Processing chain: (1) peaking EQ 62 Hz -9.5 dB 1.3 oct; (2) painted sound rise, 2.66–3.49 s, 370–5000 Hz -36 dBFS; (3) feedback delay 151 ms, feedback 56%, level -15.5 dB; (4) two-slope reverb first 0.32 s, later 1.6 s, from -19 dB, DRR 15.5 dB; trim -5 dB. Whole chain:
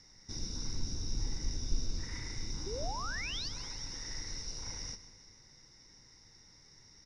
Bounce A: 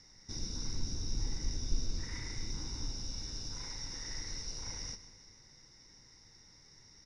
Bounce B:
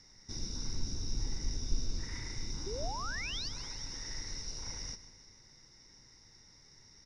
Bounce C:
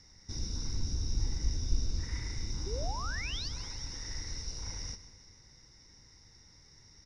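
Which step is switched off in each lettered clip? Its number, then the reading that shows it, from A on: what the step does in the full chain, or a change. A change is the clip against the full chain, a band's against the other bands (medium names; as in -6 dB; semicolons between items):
2, 1 kHz band -8.5 dB; 4, echo-to-direct -11.5 dB to -14.0 dB; 1, 125 Hz band +5.5 dB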